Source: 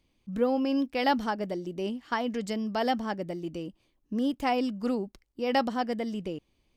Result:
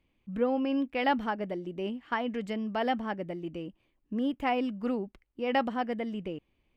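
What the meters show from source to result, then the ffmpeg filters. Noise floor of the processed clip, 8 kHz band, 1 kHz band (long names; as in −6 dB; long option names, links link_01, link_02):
−75 dBFS, below −10 dB, −1.5 dB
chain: -af "highshelf=frequency=3600:width_type=q:width=1.5:gain=-10,volume=-2dB"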